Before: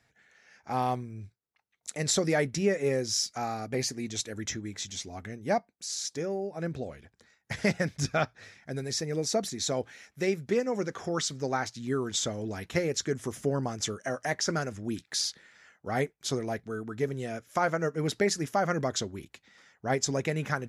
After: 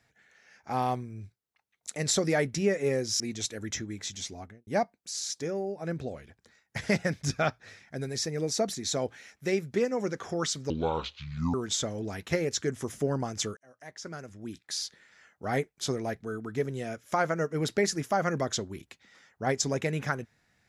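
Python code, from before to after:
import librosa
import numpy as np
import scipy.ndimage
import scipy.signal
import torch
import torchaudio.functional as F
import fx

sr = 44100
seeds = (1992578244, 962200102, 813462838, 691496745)

y = fx.studio_fade_out(x, sr, start_s=5.07, length_s=0.35)
y = fx.edit(y, sr, fx.cut(start_s=3.2, length_s=0.75),
    fx.speed_span(start_s=11.45, length_s=0.52, speed=0.62),
    fx.fade_in_span(start_s=14.0, length_s=1.9), tone=tone)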